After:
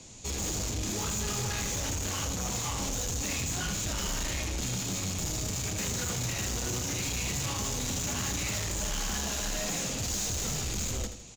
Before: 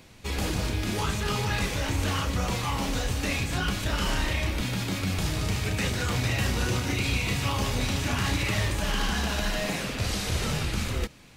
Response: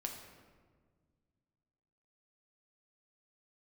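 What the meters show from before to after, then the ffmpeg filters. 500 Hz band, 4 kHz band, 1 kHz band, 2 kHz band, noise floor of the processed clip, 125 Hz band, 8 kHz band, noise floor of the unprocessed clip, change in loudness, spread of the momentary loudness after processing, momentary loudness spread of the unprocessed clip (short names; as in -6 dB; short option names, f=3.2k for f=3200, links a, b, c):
-6.0 dB, -3.5 dB, -7.0 dB, -8.0 dB, -36 dBFS, -7.0 dB, +6.5 dB, -34 dBFS, -3.0 dB, 1 LU, 3 LU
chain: -filter_complex "[0:a]acrossover=split=220|1300|2200[a][b][c][d];[c]acrusher=bits=5:mix=0:aa=0.5[e];[a][b][e][d]amix=inputs=4:normalize=0,volume=27.5dB,asoftclip=hard,volume=-27.5dB,lowpass=f=6.9k:t=q:w=8.2,asoftclip=type=tanh:threshold=-29.5dB,aecho=1:1:81|162|243|324:0.355|0.138|0.054|0.021"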